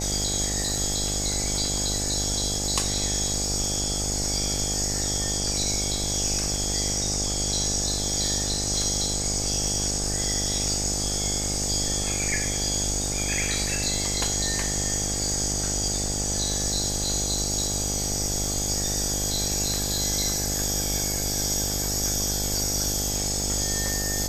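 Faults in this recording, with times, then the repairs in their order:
buzz 50 Hz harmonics 17 -31 dBFS
crackle 23 per s -33 dBFS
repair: de-click; de-hum 50 Hz, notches 17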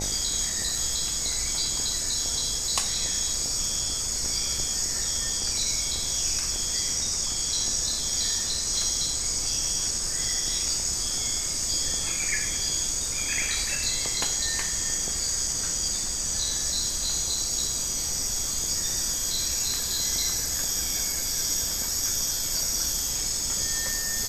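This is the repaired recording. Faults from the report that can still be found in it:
nothing left

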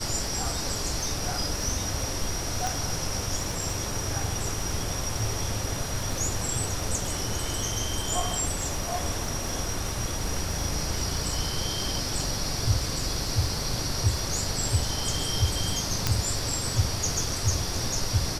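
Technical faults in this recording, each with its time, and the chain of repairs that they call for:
crackle 26 per s -33 dBFS
2.67 s: pop
16.07 s: pop -7 dBFS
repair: de-click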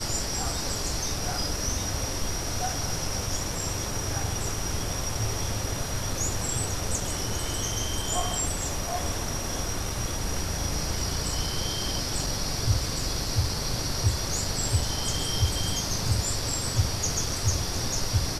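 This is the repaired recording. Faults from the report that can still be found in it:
2.67 s: pop
16.07 s: pop

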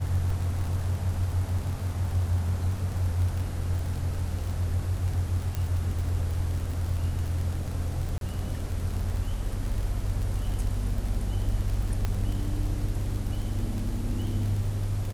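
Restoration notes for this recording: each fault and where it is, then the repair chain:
crackle 35 per s -31 dBFS
5.55 s: pop -17 dBFS
8.18–8.21 s: dropout 32 ms
12.05 s: pop -15 dBFS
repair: de-click; interpolate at 8.18 s, 32 ms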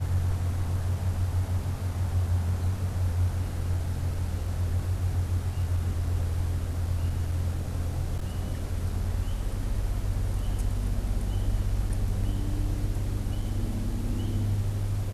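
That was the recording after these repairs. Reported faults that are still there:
nothing left

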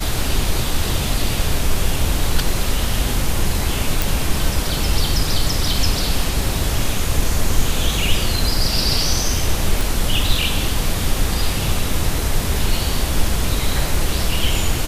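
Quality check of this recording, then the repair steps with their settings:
4.02 s: pop
9.81 s: pop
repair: de-click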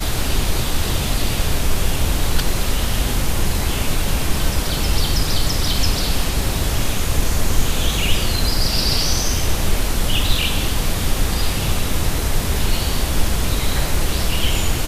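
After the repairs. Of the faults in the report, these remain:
nothing left

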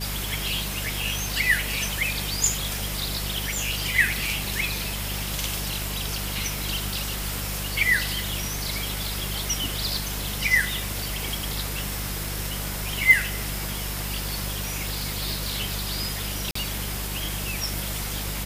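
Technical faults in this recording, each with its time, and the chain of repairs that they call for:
crackle 43 per s -33 dBFS
hum 50 Hz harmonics 4 -33 dBFS
13.11 s: pop
16.51–16.55 s: dropout 44 ms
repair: de-click; de-hum 50 Hz, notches 4; interpolate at 16.51 s, 44 ms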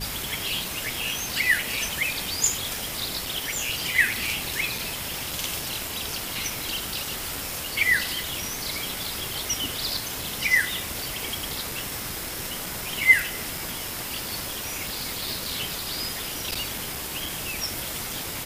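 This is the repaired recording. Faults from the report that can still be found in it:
nothing left

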